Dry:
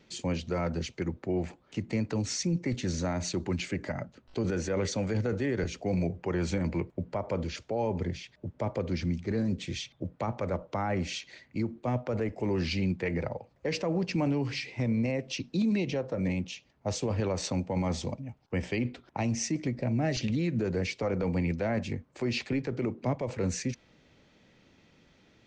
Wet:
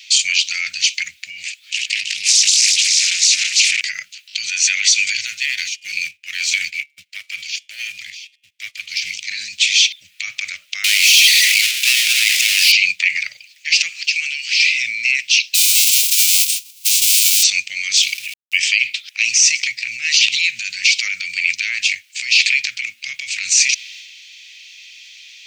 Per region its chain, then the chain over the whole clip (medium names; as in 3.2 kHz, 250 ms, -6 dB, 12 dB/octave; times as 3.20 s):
1.46–3.81 s: backward echo that repeats 165 ms, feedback 66%, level -2 dB + compression 3:1, threshold -30 dBFS + loudspeaker Doppler distortion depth 0.39 ms
5.26–9.15 s: de-hum 143.6 Hz, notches 24 + waveshaping leveller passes 1 + upward expansion 2.5:1, over -43 dBFS
10.84–12.72 s: high-pass 520 Hz + power-law waveshaper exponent 0.35
13.89–14.60 s: steep high-pass 860 Hz 48 dB/octave + compression, threshold -40 dBFS
15.54–17.42 s: formants flattened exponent 0.1 + ladder high-pass 810 Hz, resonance 35% + peaking EQ 1.6 kHz -12.5 dB 0.88 oct
17.97–18.58 s: peaking EQ 2.8 kHz +9 dB 0.83 oct + small samples zeroed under -52 dBFS
whole clip: elliptic high-pass 2.4 kHz, stop band 60 dB; transient shaper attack -1 dB, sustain +6 dB; loudness maximiser +30.5 dB; trim -1 dB